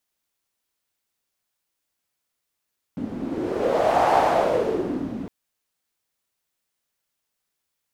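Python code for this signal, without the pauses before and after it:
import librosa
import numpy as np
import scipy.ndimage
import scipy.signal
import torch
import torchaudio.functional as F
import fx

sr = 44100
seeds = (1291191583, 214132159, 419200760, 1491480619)

y = fx.wind(sr, seeds[0], length_s=2.31, low_hz=240.0, high_hz=750.0, q=3.9, gusts=1, swing_db=12.0)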